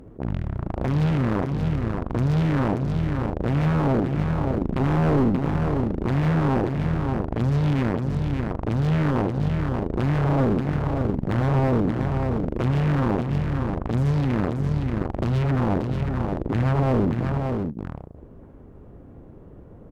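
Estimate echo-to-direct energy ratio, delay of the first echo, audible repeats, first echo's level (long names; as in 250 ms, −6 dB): −5.0 dB, 79 ms, 2, −17.5 dB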